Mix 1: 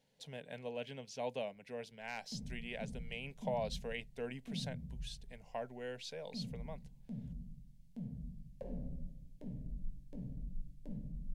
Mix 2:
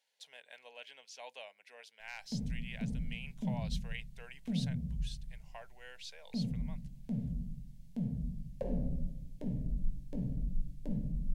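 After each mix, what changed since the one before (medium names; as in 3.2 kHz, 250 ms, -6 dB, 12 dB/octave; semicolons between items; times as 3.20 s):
speech: add high-pass 1.1 kHz 12 dB/octave; background +8.5 dB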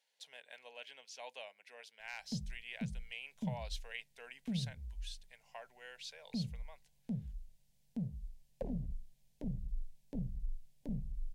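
reverb: off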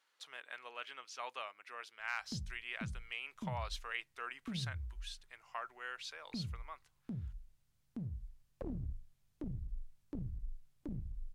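background -5.5 dB; master: remove static phaser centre 330 Hz, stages 6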